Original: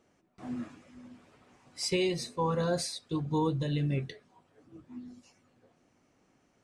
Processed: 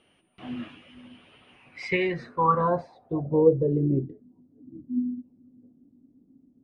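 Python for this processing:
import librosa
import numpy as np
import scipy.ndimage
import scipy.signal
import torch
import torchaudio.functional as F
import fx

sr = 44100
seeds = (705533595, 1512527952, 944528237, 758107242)

y = x + 10.0 ** (-58.0 / 20.0) * np.sin(2.0 * np.pi * 9300.0 * np.arange(len(x)) / sr)
y = fx.filter_sweep_lowpass(y, sr, from_hz=3000.0, to_hz=260.0, start_s=1.49, end_s=4.23, q=6.9)
y = y * librosa.db_to_amplitude(2.0)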